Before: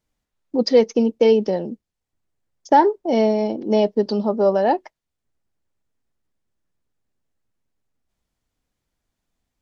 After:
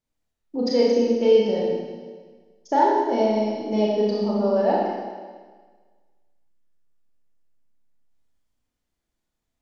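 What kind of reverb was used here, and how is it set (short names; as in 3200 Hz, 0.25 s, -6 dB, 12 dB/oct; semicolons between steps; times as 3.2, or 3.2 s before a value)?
Schroeder reverb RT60 1.5 s, combs from 26 ms, DRR -5 dB; gain -9 dB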